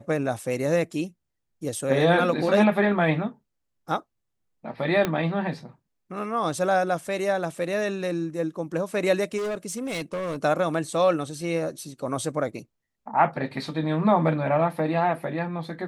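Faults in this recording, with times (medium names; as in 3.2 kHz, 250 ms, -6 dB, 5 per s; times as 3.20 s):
5.05 s: pop -10 dBFS
9.37–10.36 s: clipped -26 dBFS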